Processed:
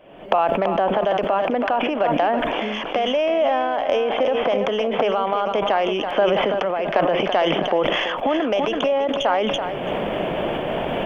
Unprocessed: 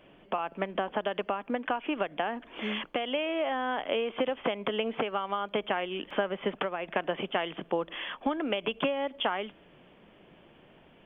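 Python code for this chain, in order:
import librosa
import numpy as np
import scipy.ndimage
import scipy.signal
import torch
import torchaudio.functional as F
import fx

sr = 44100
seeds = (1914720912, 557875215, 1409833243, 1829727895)

y = fx.tracing_dist(x, sr, depth_ms=0.026)
y = fx.recorder_agc(y, sr, target_db=-21.5, rise_db_per_s=54.0, max_gain_db=30)
y = fx.peak_eq(y, sr, hz=640.0, db=9.5, octaves=1.1)
y = fx.echo_feedback(y, sr, ms=332, feedback_pct=31, wet_db=-10.5)
y = fx.sustainer(y, sr, db_per_s=21.0)
y = y * librosa.db_to_amplitude(1.0)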